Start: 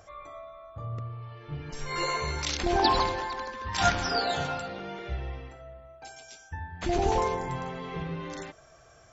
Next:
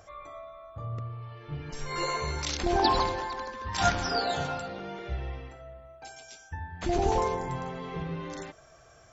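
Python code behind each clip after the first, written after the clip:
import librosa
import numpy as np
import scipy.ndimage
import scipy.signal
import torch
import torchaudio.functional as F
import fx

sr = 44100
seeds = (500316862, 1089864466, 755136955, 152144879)

y = fx.dynamic_eq(x, sr, hz=2500.0, q=0.77, threshold_db=-45.0, ratio=4.0, max_db=-3)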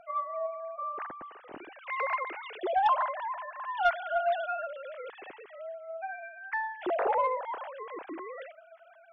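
y = fx.sine_speech(x, sr)
y = fx.rider(y, sr, range_db=3, speed_s=2.0)
y = 10.0 ** (-14.0 / 20.0) * np.tanh(y / 10.0 ** (-14.0 / 20.0))
y = F.gain(torch.from_numpy(y), -1.5).numpy()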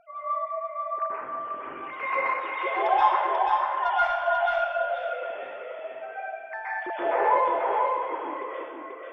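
y = fx.echo_feedback(x, sr, ms=487, feedback_pct=22, wet_db=-3.5)
y = fx.rev_plate(y, sr, seeds[0], rt60_s=0.92, hf_ratio=0.95, predelay_ms=115, drr_db=-10.0)
y = F.gain(torch.from_numpy(y), -6.0).numpy()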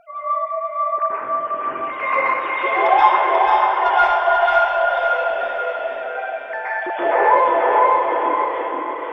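y = fx.echo_diffused(x, sr, ms=543, feedback_pct=42, wet_db=-4.5)
y = F.gain(torch.from_numpy(y), 7.5).numpy()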